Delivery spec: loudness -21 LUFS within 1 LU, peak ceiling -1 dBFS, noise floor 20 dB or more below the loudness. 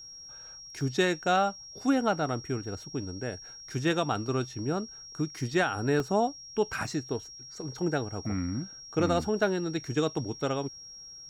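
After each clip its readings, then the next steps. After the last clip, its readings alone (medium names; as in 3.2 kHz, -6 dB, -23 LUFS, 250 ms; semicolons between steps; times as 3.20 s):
dropouts 3; longest dropout 1.2 ms; steady tone 5.6 kHz; tone level -44 dBFS; loudness -30.5 LUFS; peak level -14.5 dBFS; loudness target -21.0 LUFS
-> interpolate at 0.81/6.00/6.73 s, 1.2 ms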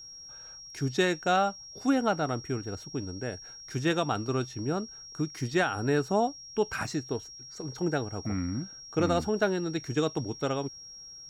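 dropouts 0; steady tone 5.6 kHz; tone level -44 dBFS
-> band-stop 5.6 kHz, Q 30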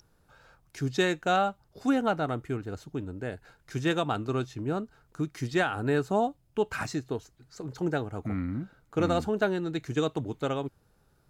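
steady tone not found; loudness -30.5 LUFS; peak level -14.5 dBFS; loudness target -21.0 LUFS
-> trim +9.5 dB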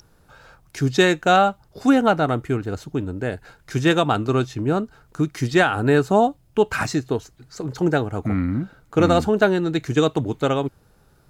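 loudness -21.0 LUFS; peak level -5.0 dBFS; noise floor -57 dBFS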